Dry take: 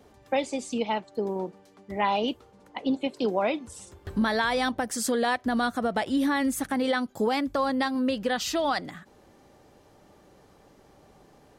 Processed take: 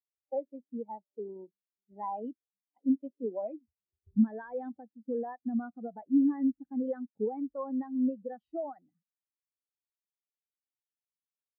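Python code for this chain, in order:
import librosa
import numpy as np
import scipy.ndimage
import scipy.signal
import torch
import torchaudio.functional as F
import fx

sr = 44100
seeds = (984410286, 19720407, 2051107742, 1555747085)

y = fx.spacing_loss(x, sr, db_at_10k=28)
y = fx.spectral_expand(y, sr, expansion=2.5)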